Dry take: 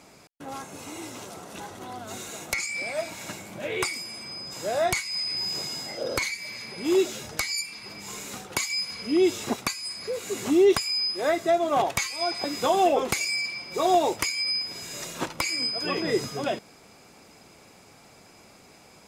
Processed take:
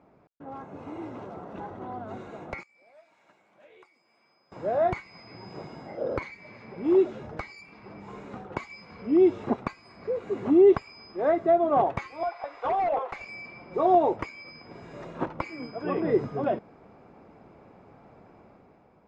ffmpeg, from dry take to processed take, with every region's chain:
ffmpeg -i in.wav -filter_complex "[0:a]asettb=1/sr,asplit=3[link_01][link_02][link_03];[link_01]atrim=end=2.634[link_04];[link_02]atrim=start=2.63:end=4.52,asetpts=PTS-STARTPTS,afade=type=in:duration=0.004:curve=qsin,afade=type=out:start_time=1.886:duration=0.004:curve=qsin,aderivative,acrossover=split=940|3500[link_05][link_06][link_07];[link_05]acompressor=threshold=-55dB:ratio=4[link_08];[link_06]acompressor=threshold=-55dB:ratio=4[link_09];[link_07]acompressor=threshold=-50dB:ratio=4[link_10];[link_08][link_09][link_10]amix=inputs=3:normalize=0[link_11];[link_03]atrim=start=4.516[link_12];[link_04][link_11]acrossfade=duration=0.004:curve1=hsin:curve2=qsin[link_13];[link_13][link_12]acrossfade=duration=0.004:curve1=qsin:curve2=hsin,asettb=1/sr,asplit=3[link_14][link_15][link_16];[link_14]atrim=end=12.234[link_17];[link_15]atrim=start=12.23:end=13.28,asetpts=PTS-STARTPTS,afade=type=in:duration=0.004:curve=qsin,afade=type=out:start_time=1.046:duration=0.004:curve=qsin,highpass=frequency=630:width=0.5412,highpass=frequency=630:width=1.3066,adynamicsmooth=sensitivity=4.5:basefreq=4400,aeval=exprs='0.0841*(abs(mod(val(0)/0.0841+3,4)-2)-1)':channel_layout=same[link_18];[link_16]atrim=start=13.276[link_19];[link_17][link_18]acrossfade=duration=0.004:curve1=hsin:curve2=qsin[link_20];[link_20][link_19]acrossfade=duration=0.004:curve1=qsin:curve2=hsin,dynaudnorm=framelen=180:gausssize=7:maxgain=7.5dB,lowpass=1100,volume=-5dB" out.wav

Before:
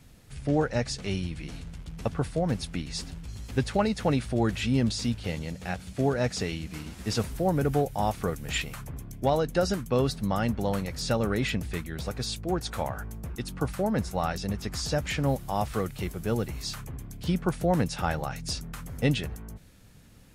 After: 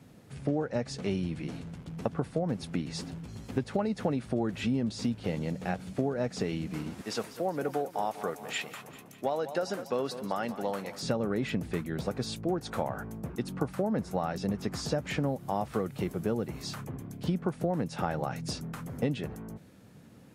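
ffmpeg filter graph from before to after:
ffmpeg -i in.wav -filter_complex "[0:a]asettb=1/sr,asplit=3[link_01][link_02][link_03];[link_01]atrim=end=7.014[link_04];[link_02]atrim=start=7.01:end=11.03,asetpts=PTS-STARTPTS,afade=type=in:duration=0.004:curve=qsin,afade=type=out:start_time=4.016:duration=0.004:curve=qsin,highpass=frequency=860:poles=1,aecho=1:1:197|394|591|788|985:0.178|0.096|0.0519|0.028|0.0151,atrim=end_sample=177282[link_05];[link_03]atrim=start=11.026[link_06];[link_04][link_05]acrossfade=duration=0.004:curve1=hsin:curve2=qsin[link_07];[link_07][link_06]acrossfade=duration=0.004:curve1=qsin:curve2=hsin,highpass=160,tiltshelf=frequency=1400:gain=6,acompressor=threshold=-26dB:ratio=6" out.wav

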